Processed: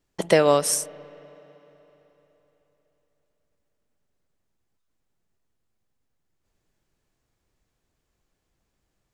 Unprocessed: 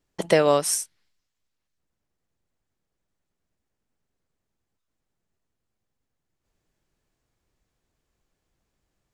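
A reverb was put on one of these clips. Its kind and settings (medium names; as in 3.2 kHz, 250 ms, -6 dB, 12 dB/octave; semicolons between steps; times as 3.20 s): spring tank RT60 3.8 s, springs 34/42 ms, chirp 80 ms, DRR 19 dB; trim +1 dB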